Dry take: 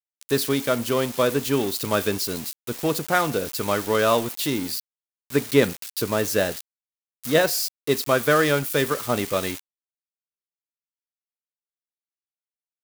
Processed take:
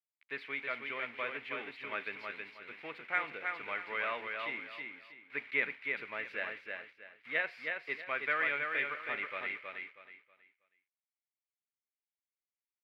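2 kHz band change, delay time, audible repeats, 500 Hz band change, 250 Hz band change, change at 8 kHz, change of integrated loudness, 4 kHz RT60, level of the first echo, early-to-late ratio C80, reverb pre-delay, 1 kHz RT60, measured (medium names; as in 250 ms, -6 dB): -5.0 dB, 320 ms, 3, -21.5 dB, -26.5 dB, under -40 dB, -14.0 dB, no reverb, -4.5 dB, no reverb, no reverb, no reverb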